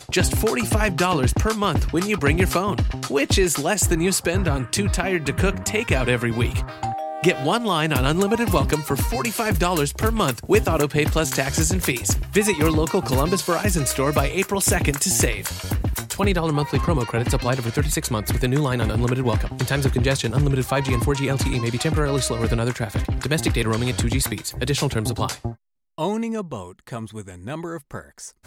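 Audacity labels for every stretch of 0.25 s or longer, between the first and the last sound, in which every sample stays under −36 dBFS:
25.530000	25.980000	silence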